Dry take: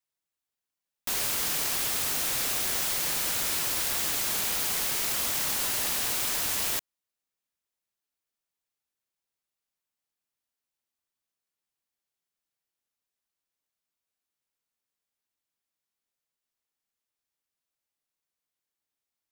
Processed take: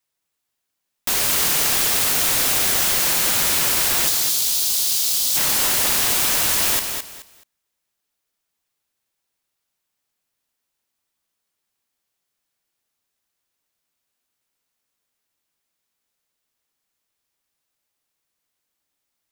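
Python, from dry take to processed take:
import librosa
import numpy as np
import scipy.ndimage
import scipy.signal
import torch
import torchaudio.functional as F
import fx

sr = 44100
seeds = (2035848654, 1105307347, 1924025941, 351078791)

y = fx.high_shelf_res(x, sr, hz=2800.0, db=12.5, q=1.5, at=(4.07, 5.35), fade=0.02)
y = fx.over_compress(y, sr, threshold_db=-23.0, ratio=-1.0)
y = fx.echo_feedback(y, sr, ms=214, feedback_pct=24, wet_db=-6.5)
y = F.gain(torch.from_numpy(y), 5.5).numpy()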